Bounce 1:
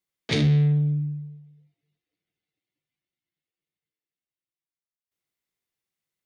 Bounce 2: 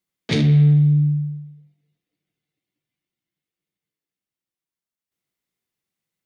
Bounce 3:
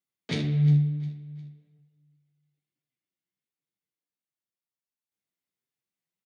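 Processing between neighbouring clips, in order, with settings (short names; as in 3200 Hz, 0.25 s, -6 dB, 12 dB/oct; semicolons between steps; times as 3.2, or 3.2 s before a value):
bell 200 Hz +6 dB 1.4 oct; compressor 2.5:1, threshold -17 dBFS, peak gain reduction 3.5 dB; on a send at -11 dB: reverb RT60 1.2 s, pre-delay 62 ms; on the sum: gain +2 dB
flange 1.4 Hz, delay 6.6 ms, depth 5.6 ms, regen +35%; HPF 86 Hz; feedback echo 0.355 s, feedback 36%, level -17.5 dB; gain -4.5 dB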